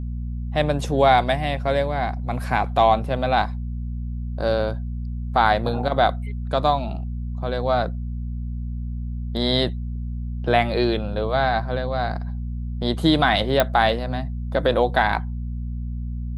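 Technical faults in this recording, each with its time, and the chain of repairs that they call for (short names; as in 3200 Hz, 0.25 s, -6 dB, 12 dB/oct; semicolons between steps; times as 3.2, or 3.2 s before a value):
hum 60 Hz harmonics 4 -28 dBFS
13.6 pop -3 dBFS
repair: de-click; de-hum 60 Hz, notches 4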